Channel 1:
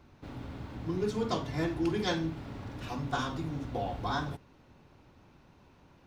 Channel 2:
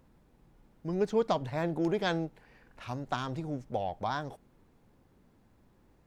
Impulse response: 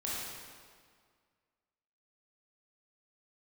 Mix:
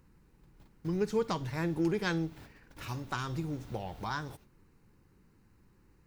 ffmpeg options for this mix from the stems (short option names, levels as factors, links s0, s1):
-filter_complex "[0:a]aemphasis=mode=production:type=75fm,acompressor=threshold=0.01:ratio=6,volume=0.668[s0];[1:a]equalizer=f=650:w=2.3:g=-15,bandreject=f=3400:w=5,volume=1.19,asplit=2[s1][s2];[s2]apad=whole_len=267621[s3];[s0][s3]sidechaingate=range=0.0224:threshold=0.00178:ratio=16:detection=peak[s4];[s4][s1]amix=inputs=2:normalize=0,equalizer=f=250:t=o:w=0.21:g=-7.5"